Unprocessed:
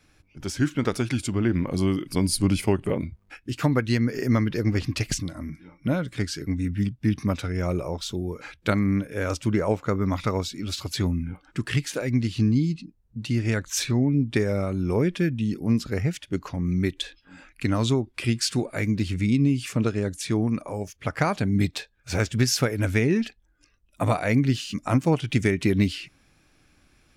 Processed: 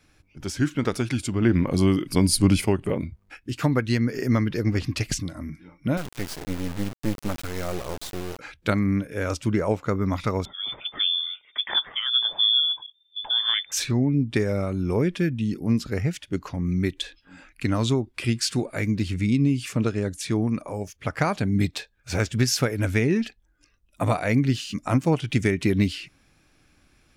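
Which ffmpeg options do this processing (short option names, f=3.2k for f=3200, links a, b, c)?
-filter_complex "[0:a]asettb=1/sr,asplit=3[a][b][c];[a]atrim=end=5.974[d];[b]atrim=start=5.97:end=8.39,asetpts=PTS-STARTPTS,afade=t=in:d=0.004:c=qsin,afade=t=out:st=2.416:d=0.004:c=qsin,acrusher=bits=3:dc=4:mix=0:aa=0.000001[e];[c]atrim=start=8.386[f];[d][e]acrossfade=d=0.004:c1=hsin:c2=qsin[g];[g][f]acrossfade=d=0.004:c1=qsin:c2=hsin,asettb=1/sr,asplit=3[h][i][j];[h]atrim=end=10.454[k];[i]atrim=start=10.45:end=13.72,asetpts=PTS-STARTPTS,afade=t=in:d=0.004:c=qsin,afade=t=out:st=3.266:d=0.004:c=qsin,lowpass=f=3.1k:t=q:w=0.5098,lowpass=f=3.1k:t=q:w=0.6013,lowpass=f=3.1k:t=q:w=0.9,lowpass=f=3.1k:t=q:w=2.563,afreqshift=-3600[l];[j]atrim=start=13.716[m];[k][l]acrossfade=d=0.004:c1=hsin:c2=qsin[n];[n][m]acrossfade=d=0.004:c1=qsin:c2=hsin,asplit=3[o][p][q];[o]atrim=end=1.422[r];[p]atrim=start=1.418:end=2.652,asetpts=PTS-STARTPTS,volume=3.5dB[s];[q]atrim=start=2.648[t];[r][s]acrossfade=d=0.004:c1=hsin:c2=hsin[u];[u][t]acrossfade=d=0.004:c1=hsin:c2=hsin"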